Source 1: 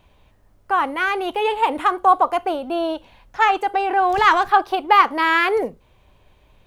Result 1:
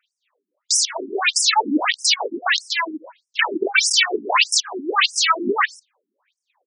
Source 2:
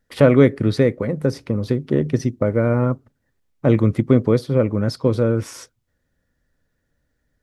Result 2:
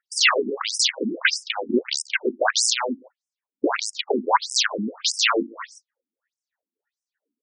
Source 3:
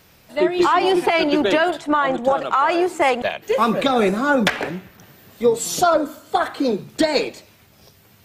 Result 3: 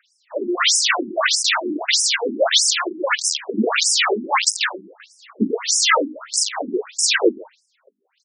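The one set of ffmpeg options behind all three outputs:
-filter_complex "[0:a]aemphasis=mode=production:type=cd,agate=range=-19dB:threshold=-42dB:ratio=16:detection=peak,highshelf=f=9.3k:g=5,asplit=2[a][b];[b]acompressor=threshold=-27dB:ratio=10,volume=0.5dB[c];[a][c]amix=inputs=2:normalize=0,aeval=exprs='clip(val(0),-1,0.158)':c=same,asplit=2[d][e];[e]highpass=f=720:p=1,volume=14dB,asoftclip=type=tanh:threshold=0dB[f];[d][f]amix=inputs=2:normalize=0,lowpass=f=1.8k:p=1,volume=-6dB,apsyclip=10dB,aeval=exprs='(mod(1.26*val(0)+1,2)-1)/1.26':c=same,aphaser=in_gain=1:out_gain=1:delay=2.5:decay=0.62:speed=1.1:type=triangular,aeval=exprs='2*(cos(1*acos(clip(val(0)/2,-1,1)))-cos(1*PI/2))+0.0282*(cos(5*acos(clip(val(0)/2,-1,1)))-cos(5*PI/2))+0.1*(cos(6*acos(clip(val(0)/2,-1,1)))-cos(6*PI/2))+0.0562*(cos(7*acos(clip(val(0)/2,-1,1)))-cos(7*PI/2))':c=same,asplit=2[g][h];[h]aecho=0:1:140:0.0708[i];[g][i]amix=inputs=2:normalize=0,afftfilt=real='re*between(b*sr/1024,260*pow(7200/260,0.5+0.5*sin(2*PI*1.6*pts/sr))/1.41,260*pow(7200/260,0.5+0.5*sin(2*PI*1.6*pts/sr))*1.41)':imag='im*between(b*sr/1024,260*pow(7200/260,0.5+0.5*sin(2*PI*1.6*pts/sr))/1.41,260*pow(7200/260,0.5+0.5*sin(2*PI*1.6*pts/sr))*1.41)':win_size=1024:overlap=0.75,volume=-6dB"

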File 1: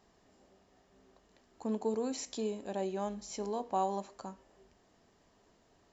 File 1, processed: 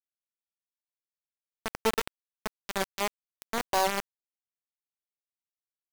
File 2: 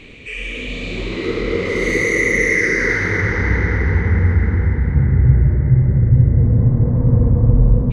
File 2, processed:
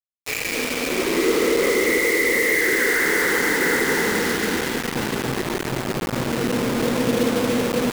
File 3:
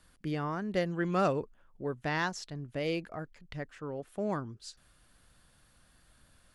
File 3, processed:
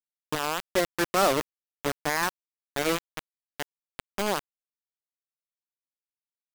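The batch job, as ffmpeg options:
-af "highpass=f=260:w=0.5412,highpass=f=260:w=1.3066,alimiter=limit=-16dB:level=0:latency=1,lowpass=f=2.2k:w=0.5412,lowpass=f=2.2k:w=1.3066,acrusher=bits=4:mix=0:aa=0.000001,volume=5.5dB"

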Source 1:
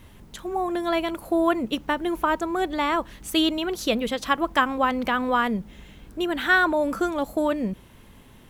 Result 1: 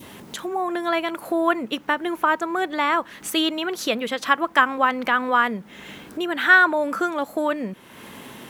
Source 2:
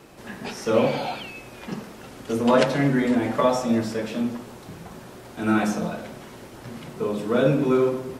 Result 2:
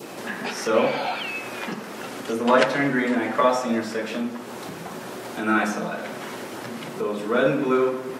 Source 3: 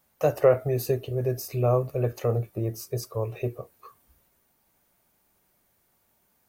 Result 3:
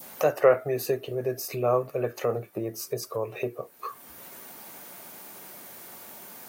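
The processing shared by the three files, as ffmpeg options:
-af "acompressor=mode=upward:threshold=-22dB:ratio=2.5,adynamicequalizer=threshold=0.0141:dfrequency=1600:dqfactor=0.9:tfrequency=1600:tqfactor=0.9:attack=5:release=100:ratio=0.375:range=3.5:mode=boostabove:tftype=bell,highpass=210,volume=-1dB"

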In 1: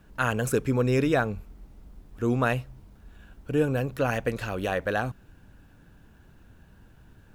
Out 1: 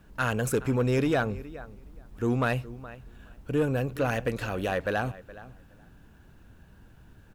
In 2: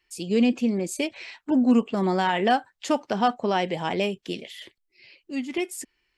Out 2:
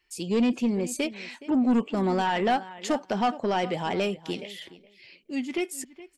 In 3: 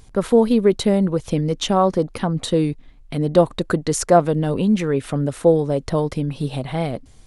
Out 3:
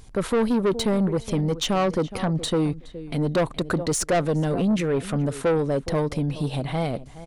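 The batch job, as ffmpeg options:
-filter_complex "[0:a]asplit=2[a][b];[b]adelay=419,lowpass=f=3.5k:p=1,volume=-18.5dB,asplit=2[c][d];[d]adelay=419,lowpass=f=3.5k:p=1,volume=0.15[e];[c][e]amix=inputs=2:normalize=0[f];[a][f]amix=inputs=2:normalize=0,asoftclip=type=tanh:threshold=-17dB"

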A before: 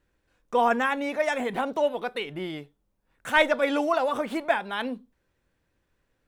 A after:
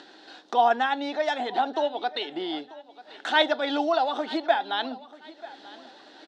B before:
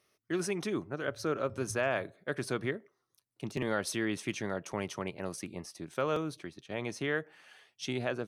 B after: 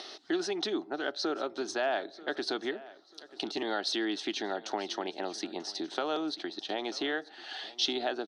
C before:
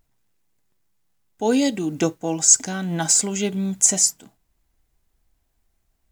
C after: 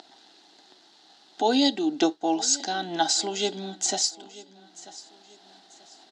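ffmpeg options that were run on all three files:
-af "acompressor=mode=upward:threshold=-24dB:ratio=2.5,aexciter=amount=2.6:drive=5.8:freq=3.4k,highpass=f=290:w=0.5412,highpass=f=290:w=1.3066,equalizer=f=310:t=q:w=4:g=3,equalizer=f=510:t=q:w=4:g=-9,equalizer=f=770:t=q:w=4:g=9,equalizer=f=1.1k:t=q:w=4:g=-7,equalizer=f=2.3k:t=q:w=4:g=-8,equalizer=f=4.1k:t=q:w=4:g=4,lowpass=f=4.4k:w=0.5412,lowpass=f=4.4k:w=1.3066,aecho=1:1:939|1878|2817:0.112|0.0381|0.013"

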